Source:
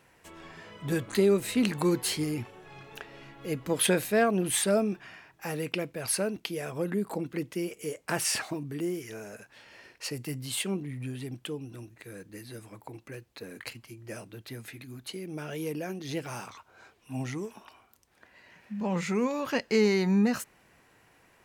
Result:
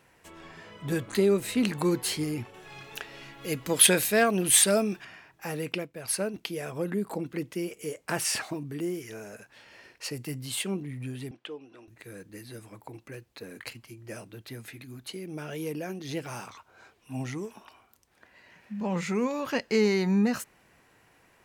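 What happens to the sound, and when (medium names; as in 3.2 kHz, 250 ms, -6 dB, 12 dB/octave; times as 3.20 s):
2.54–5.05 s: treble shelf 2 kHz +9.5 dB
5.78–6.34 s: upward expansion, over -47 dBFS
11.31–11.88 s: band-pass 420–3600 Hz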